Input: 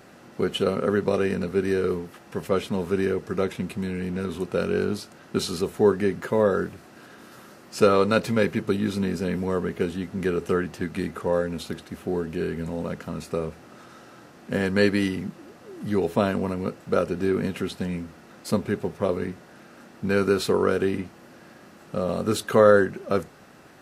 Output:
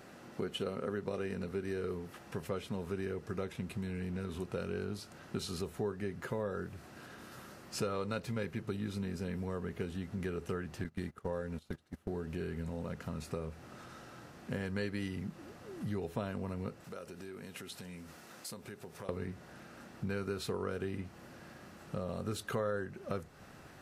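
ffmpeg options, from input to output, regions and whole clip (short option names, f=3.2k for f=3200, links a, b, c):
-filter_complex "[0:a]asettb=1/sr,asplit=3[a][b][c];[a]atrim=end=10.844[d];[b]atrim=start=10.84:end=12.22,asetpts=PTS-STARTPTS,afade=t=in:d=0.004:c=qsin,afade=t=out:st=1.376:d=0.004:c=qsin,agate=range=-21dB:threshold=-33dB:ratio=16:release=100:detection=peak,bandreject=f=2.5k:w=22[e];[c]atrim=start=12.216[f];[d][e]acrossfade=d=0.004:c1=hsin:c2=qsin[g];[g][f]acrossfade=d=0.004:c1=qsin:c2=hsin,asettb=1/sr,asplit=3[h][i][j];[h]atrim=end=16.844[k];[i]atrim=start=16.84:end=19.09,asetpts=PTS-STARTPTS,afade=t=in:d=0.004:c=qsin,afade=t=out:st=2.246:d=0.004:c=qsin,highshelf=f=4.7k:g=9,acompressor=threshold=-38dB:ratio=4:attack=3.2:release=140:knee=1:detection=peak,highpass=f=300:p=1[l];[j]atrim=start=19.086[m];[k][l]acrossfade=d=0.004:c1=hsin:c2=qsin[n];[n][m]acrossfade=d=0.004:c1=qsin:c2=hsin,asubboost=boost=2.5:cutoff=140,acompressor=threshold=-33dB:ratio=3,volume=-4dB"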